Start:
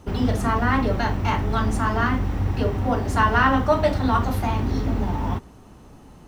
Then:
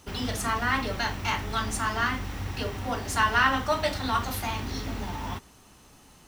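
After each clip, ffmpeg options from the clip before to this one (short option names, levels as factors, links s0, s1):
-af "tiltshelf=f=1400:g=-8.5,volume=0.75"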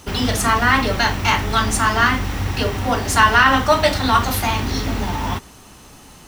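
-af "alimiter=level_in=3.98:limit=0.891:release=50:level=0:latency=1,volume=0.891"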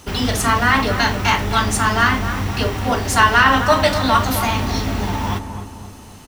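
-filter_complex "[0:a]asplit=2[s0][s1];[s1]adelay=260,lowpass=f=1300:p=1,volume=0.398,asplit=2[s2][s3];[s3]adelay=260,lowpass=f=1300:p=1,volume=0.52,asplit=2[s4][s5];[s5]adelay=260,lowpass=f=1300:p=1,volume=0.52,asplit=2[s6][s7];[s7]adelay=260,lowpass=f=1300:p=1,volume=0.52,asplit=2[s8][s9];[s9]adelay=260,lowpass=f=1300:p=1,volume=0.52,asplit=2[s10][s11];[s11]adelay=260,lowpass=f=1300:p=1,volume=0.52[s12];[s0][s2][s4][s6][s8][s10][s12]amix=inputs=7:normalize=0"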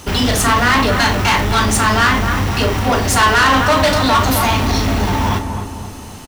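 -filter_complex "[0:a]asoftclip=type=tanh:threshold=0.158,asplit=2[s0][s1];[s1]adelay=37,volume=0.282[s2];[s0][s2]amix=inputs=2:normalize=0,volume=2.24"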